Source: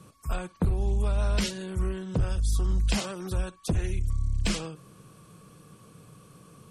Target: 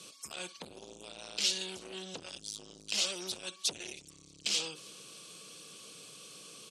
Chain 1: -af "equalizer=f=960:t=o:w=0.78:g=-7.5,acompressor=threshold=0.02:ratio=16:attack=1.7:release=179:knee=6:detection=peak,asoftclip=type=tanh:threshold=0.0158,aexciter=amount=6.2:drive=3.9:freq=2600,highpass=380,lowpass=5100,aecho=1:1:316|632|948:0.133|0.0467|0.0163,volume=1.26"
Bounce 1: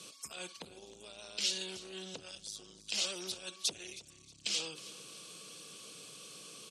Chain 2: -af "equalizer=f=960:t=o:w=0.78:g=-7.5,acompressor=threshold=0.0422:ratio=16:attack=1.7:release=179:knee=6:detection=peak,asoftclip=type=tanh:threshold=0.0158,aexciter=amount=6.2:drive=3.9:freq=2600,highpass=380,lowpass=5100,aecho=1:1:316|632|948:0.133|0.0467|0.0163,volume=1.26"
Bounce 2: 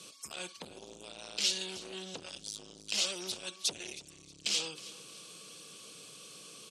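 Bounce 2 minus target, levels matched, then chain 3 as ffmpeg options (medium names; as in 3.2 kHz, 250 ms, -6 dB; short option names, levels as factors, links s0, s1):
echo-to-direct +8 dB
-af "equalizer=f=960:t=o:w=0.78:g=-7.5,acompressor=threshold=0.0422:ratio=16:attack=1.7:release=179:knee=6:detection=peak,asoftclip=type=tanh:threshold=0.0158,aexciter=amount=6.2:drive=3.9:freq=2600,highpass=380,lowpass=5100,aecho=1:1:316|632:0.0531|0.0186,volume=1.26"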